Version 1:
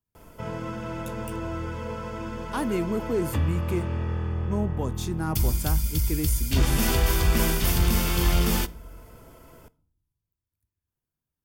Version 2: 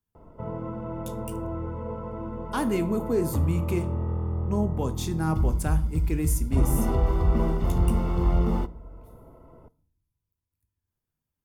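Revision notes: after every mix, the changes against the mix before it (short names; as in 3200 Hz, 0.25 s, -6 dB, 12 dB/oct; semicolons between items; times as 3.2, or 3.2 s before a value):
speech: send +10.5 dB; background: add polynomial smoothing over 65 samples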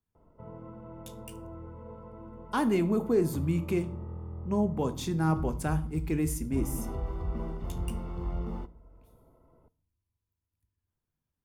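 background -11.5 dB; master: add high shelf 6100 Hz -7.5 dB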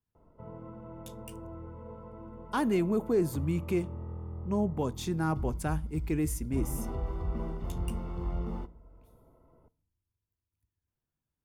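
speech: send -11.5 dB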